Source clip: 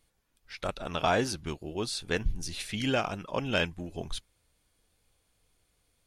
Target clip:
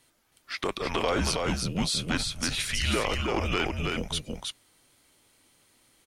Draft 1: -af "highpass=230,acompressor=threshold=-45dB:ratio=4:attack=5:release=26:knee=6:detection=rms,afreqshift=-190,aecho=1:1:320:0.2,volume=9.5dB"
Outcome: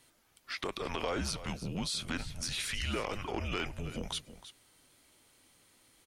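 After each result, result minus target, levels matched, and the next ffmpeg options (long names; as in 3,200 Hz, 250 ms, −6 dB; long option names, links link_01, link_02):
downward compressor: peak gain reduction +7.5 dB; echo-to-direct −10.5 dB
-af "highpass=230,acompressor=threshold=-35dB:ratio=4:attack=5:release=26:knee=6:detection=rms,afreqshift=-190,aecho=1:1:320:0.2,volume=9.5dB"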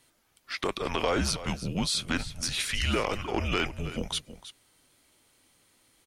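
echo-to-direct −10.5 dB
-af "highpass=230,acompressor=threshold=-35dB:ratio=4:attack=5:release=26:knee=6:detection=rms,afreqshift=-190,aecho=1:1:320:0.668,volume=9.5dB"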